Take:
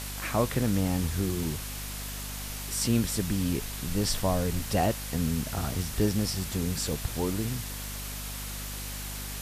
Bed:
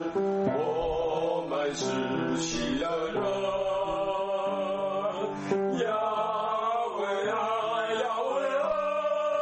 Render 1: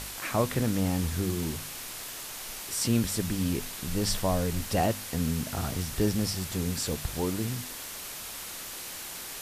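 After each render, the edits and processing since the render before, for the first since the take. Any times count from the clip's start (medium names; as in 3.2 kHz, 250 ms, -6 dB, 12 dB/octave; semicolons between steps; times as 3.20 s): de-hum 50 Hz, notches 5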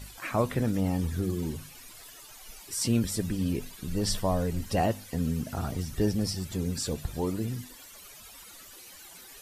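noise reduction 15 dB, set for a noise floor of -40 dBFS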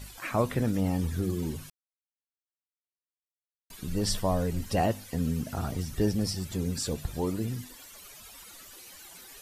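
1.70–3.70 s: mute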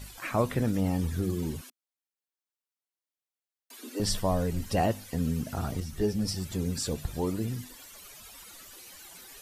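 1.61–4.00 s: steep high-pass 230 Hz 96 dB/octave; 5.80–6.28 s: three-phase chorus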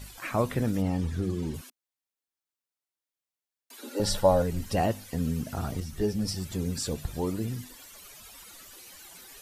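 0.82–1.54 s: distance through air 50 m; 3.78–4.42 s: small resonant body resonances 560/840/1400/3900 Hz, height 14 dB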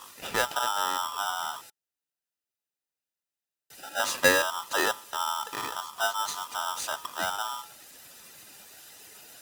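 comb of notches 1.1 kHz; polarity switched at an audio rate 1.1 kHz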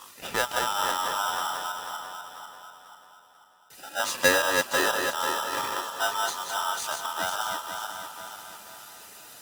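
backward echo that repeats 246 ms, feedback 65%, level -4.5 dB; filtered feedback delay 709 ms, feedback 32%, level -15 dB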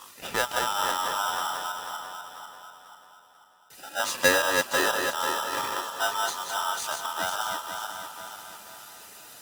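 no audible change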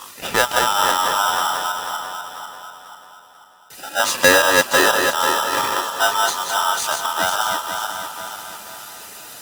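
trim +9.5 dB; peak limiter -2 dBFS, peak gain reduction 3 dB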